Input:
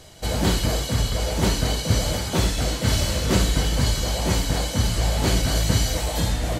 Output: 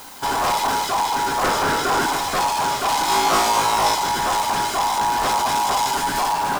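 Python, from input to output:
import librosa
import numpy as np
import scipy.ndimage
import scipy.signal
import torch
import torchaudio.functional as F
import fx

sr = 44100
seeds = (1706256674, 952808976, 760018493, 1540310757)

y = fx.peak_eq(x, sr, hz=520.0, db=10.5, octaves=1.9, at=(1.43, 2.06))
y = 10.0 ** (-21.5 / 20.0) * np.tanh(y / 10.0 ** (-21.5 / 20.0))
y = y * np.sin(2.0 * np.pi * 900.0 * np.arange(len(y)) / sr)
y = fx.room_flutter(y, sr, wall_m=3.1, rt60_s=0.45, at=(3.06, 3.95))
y = fx.dmg_noise_colour(y, sr, seeds[0], colour='blue', level_db=-51.0)
y = F.gain(torch.from_numpy(y), 8.0).numpy()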